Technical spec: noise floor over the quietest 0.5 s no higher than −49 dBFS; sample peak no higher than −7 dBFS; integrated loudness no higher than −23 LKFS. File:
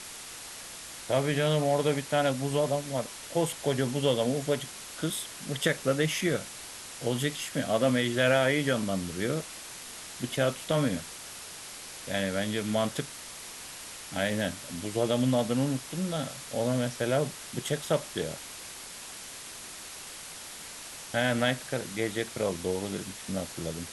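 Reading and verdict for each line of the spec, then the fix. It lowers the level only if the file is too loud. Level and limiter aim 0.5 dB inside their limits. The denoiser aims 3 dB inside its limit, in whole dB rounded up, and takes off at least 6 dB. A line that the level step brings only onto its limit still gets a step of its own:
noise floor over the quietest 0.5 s −43 dBFS: out of spec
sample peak −11.0 dBFS: in spec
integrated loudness −30.5 LKFS: in spec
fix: broadband denoise 9 dB, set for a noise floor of −43 dBFS

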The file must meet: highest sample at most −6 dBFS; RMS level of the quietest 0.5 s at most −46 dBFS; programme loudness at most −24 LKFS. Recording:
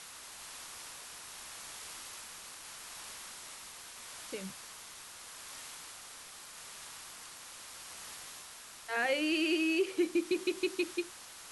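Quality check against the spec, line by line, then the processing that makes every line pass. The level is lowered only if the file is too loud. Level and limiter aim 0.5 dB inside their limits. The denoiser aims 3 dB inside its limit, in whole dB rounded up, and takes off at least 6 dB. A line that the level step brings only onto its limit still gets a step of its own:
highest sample −19.5 dBFS: in spec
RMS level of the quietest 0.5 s −51 dBFS: in spec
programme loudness −38.0 LKFS: in spec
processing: no processing needed

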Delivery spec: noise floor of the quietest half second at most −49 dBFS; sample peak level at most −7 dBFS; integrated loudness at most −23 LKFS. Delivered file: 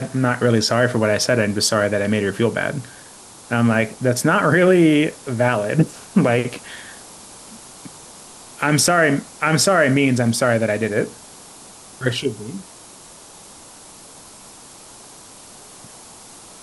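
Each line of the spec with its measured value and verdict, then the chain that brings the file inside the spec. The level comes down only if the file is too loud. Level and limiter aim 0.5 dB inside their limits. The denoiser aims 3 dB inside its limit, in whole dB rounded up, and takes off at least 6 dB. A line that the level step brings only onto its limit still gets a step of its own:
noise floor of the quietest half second −42 dBFS: out of spec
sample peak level −4.5 dBFS: out of spec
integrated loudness −18.0 LKFS: out of spec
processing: broadband denoise 6 dB, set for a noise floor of −42 dBFS
level −5.5 dB

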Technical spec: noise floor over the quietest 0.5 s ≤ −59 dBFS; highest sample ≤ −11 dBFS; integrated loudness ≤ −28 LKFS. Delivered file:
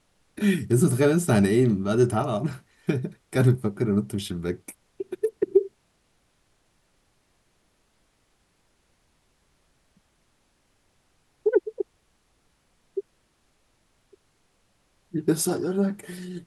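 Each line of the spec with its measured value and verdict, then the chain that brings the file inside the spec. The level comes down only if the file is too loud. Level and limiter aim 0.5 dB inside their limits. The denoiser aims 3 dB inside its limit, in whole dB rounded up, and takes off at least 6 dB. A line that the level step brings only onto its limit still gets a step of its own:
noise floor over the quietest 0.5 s −68 dBFS: in spec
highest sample −7.5 dBFS: out of spec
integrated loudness −25.0 LKFS: out of spec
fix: level −3.5 dB
brickwall limiter −11.5 dBFS

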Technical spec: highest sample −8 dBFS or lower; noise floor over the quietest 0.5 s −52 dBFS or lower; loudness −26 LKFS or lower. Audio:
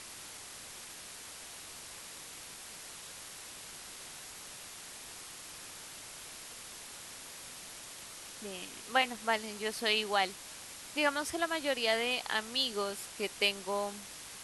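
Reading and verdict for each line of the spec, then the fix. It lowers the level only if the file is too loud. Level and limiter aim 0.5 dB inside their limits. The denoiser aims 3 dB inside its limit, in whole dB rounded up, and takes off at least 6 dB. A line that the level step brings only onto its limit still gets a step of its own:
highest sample −14.5 dBFS: in spec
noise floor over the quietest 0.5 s −48 dBFS: out of spec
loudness −36.5 LKFS: in spec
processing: broadband denoise 7 dB, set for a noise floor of −48 dBFS

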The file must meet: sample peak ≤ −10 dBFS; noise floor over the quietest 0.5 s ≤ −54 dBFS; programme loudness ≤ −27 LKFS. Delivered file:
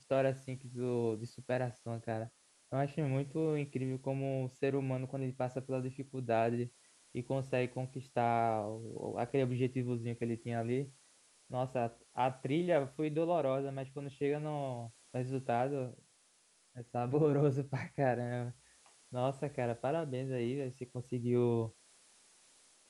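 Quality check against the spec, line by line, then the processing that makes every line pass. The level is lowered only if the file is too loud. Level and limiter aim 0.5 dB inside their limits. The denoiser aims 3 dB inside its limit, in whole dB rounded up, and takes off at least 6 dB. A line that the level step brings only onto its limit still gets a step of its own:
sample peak −18.5 dBFS: in spec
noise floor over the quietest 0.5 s −69 dBFS: in spec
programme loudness −36.5 LKFS: in spec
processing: no processing needed

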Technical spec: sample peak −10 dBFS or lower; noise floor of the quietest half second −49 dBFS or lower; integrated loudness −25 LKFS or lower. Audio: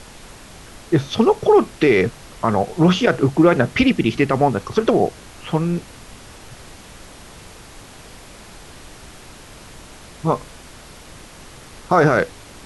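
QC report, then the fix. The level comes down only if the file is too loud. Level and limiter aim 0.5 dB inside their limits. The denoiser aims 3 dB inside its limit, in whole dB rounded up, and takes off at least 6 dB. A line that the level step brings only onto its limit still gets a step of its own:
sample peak −4.5 dBFS: out of spec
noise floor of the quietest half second −41 dBFS: out of spec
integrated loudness −18.0 LKFS: out of spec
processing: broadband denoise 6 dB, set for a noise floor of −41 dBFS
level −7.5 dB

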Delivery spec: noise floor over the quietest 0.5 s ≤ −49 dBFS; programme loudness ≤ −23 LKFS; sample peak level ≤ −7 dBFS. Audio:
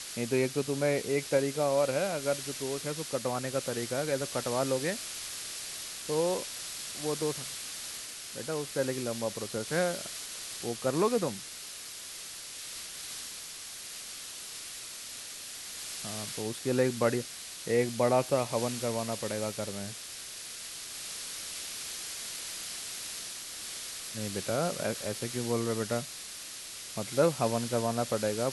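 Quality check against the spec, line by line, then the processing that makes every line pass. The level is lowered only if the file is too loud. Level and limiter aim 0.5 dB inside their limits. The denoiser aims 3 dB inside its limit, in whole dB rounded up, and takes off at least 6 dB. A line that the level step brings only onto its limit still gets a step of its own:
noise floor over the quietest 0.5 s −43 dBFS: out of spec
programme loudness −33.0 LKFS: in spec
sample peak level −13.0 dBFS: in spec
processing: broadband denoise 9 dB, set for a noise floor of −43 dBFS

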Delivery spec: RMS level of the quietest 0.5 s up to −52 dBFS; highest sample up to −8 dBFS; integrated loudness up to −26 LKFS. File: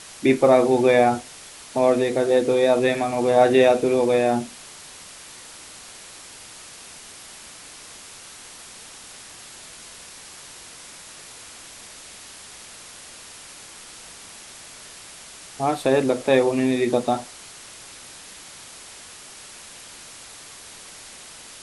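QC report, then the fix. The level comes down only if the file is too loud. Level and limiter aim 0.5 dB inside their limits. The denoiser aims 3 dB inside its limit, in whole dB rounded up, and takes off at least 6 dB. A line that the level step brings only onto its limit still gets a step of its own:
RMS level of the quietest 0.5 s −43 dBFS: out of spec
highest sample −4.5 dBFS: out of spec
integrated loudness −19.5 LKFS: out of spec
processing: broadband denoise 6 dB, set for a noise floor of −43 dBFS
level −7 dB

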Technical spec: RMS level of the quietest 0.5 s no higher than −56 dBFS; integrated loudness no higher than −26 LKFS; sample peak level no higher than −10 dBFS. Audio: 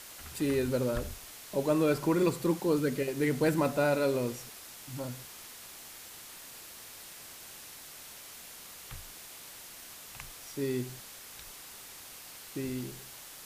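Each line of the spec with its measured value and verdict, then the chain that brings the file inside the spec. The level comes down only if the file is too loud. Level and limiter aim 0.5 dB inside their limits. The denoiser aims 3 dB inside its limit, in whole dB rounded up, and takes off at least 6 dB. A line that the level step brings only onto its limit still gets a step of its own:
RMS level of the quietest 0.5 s −48 dBFS: out of spec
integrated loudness −31.5 LKFS: in spec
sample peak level −15.0 dBFS: in spec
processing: broadband denoise 11 dB, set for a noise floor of −48 dBFS

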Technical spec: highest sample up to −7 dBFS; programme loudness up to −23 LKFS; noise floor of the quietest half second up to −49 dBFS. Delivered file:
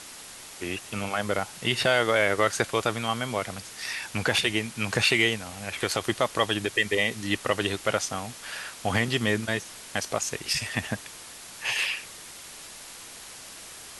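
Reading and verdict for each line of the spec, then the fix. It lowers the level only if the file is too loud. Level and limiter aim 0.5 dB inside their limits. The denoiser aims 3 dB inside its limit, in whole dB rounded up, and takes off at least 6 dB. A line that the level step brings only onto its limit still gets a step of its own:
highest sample −8.0 dBFS: in spec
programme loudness −27.0 LKFS: in spec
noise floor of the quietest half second −44 dBFS: out of spec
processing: broadband denoise 8 dB, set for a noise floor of −44 dBFS

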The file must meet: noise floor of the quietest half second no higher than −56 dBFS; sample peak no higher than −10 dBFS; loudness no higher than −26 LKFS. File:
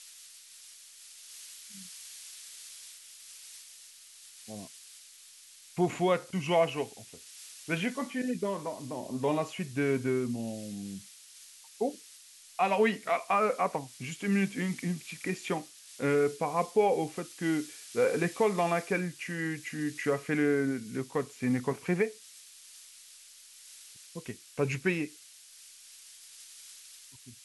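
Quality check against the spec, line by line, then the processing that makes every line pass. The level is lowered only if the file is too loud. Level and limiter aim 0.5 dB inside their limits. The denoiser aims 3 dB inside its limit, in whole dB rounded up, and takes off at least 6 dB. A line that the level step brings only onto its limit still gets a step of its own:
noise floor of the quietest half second −54 dBFS: out of spec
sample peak −14.5 dBFS: in spec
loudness −31.0 LKFS: in spec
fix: broadband denoise 6 dB, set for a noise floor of −54 dBFS

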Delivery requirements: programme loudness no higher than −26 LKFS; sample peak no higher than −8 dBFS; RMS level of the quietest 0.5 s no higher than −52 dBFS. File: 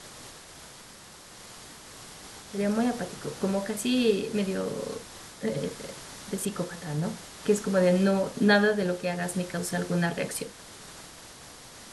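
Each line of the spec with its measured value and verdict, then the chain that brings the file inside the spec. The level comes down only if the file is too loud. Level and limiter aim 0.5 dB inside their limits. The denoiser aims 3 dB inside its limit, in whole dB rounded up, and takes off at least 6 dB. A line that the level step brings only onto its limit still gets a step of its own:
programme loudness −28.0 LKFS: in spec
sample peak −10.5 dBFS: in spec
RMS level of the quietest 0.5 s −49 dBFS: out of spec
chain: broadband denoise 6 dB, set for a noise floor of −49 dBFS

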